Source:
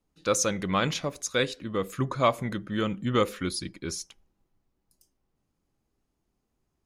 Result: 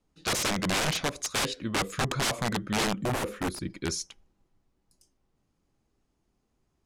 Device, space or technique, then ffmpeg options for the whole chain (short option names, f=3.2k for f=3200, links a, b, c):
overflowing digital effects unit: -filter_complex "[0:a]aeval=exprs='(mod(15.8*val(0)+1,2)-1)/15.8':c=same,lowpass=9.5k,asettb=1/sr,asplit=3[a][b][c];[a]atrim=end=3.034[d];[b]atrim=start=3.03:end=3.7,asetpts=PTS-STARTPTS,afade=t=in:d=0.004:c=qsin,afade=t=out:st=0.666:d=0.004:c=qsin,equalizer=f=4.6k:w=0.56:g=-12[e];[c]atrim=start=3.696[f];[d][e]acrossfade=d=0.004:c1=hsin:c2=qsin[g];[g][f]acrossfade=d=0.004:c1=qsin:c2=hsin,volume=3dB"